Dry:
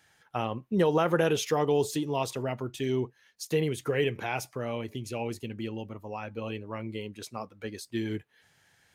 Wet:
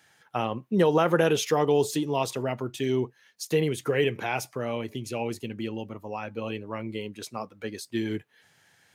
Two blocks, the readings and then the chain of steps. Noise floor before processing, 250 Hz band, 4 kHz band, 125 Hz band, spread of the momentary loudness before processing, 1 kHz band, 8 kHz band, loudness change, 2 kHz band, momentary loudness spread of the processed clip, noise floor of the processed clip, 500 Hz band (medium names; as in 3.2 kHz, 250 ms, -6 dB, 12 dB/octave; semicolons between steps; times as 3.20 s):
-66 dBFS, +3.0 dB, +3.0 dB, +1.5 dB, 14 LU, +3.0 dB, +3.0 dB, +3.0 dB, +3.0 dB, 14 LU, -63 dBFS, +3.0 dB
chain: high-pass 110 Hz; trim +3 dB